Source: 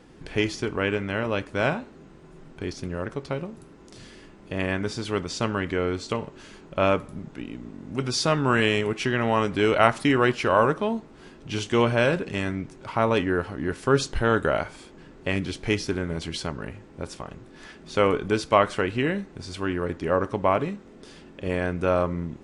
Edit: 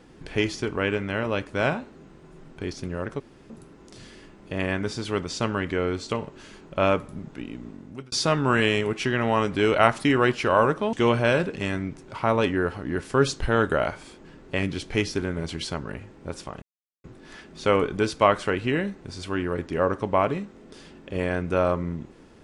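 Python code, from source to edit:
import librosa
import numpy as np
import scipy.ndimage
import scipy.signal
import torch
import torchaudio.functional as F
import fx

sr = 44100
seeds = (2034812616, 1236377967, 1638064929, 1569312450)

y = fx.edit(x, sr, fx.room_tone_fill(start_s=3.2, length_s=0.3),
    fx.fade_out_span(start_s=7.7, length_s=0.42),
    fx.cut(start_s=10.93, length_s=0.73),
    fx.insert_silence(at_s=17.35, length_s=0.42), tone=tone)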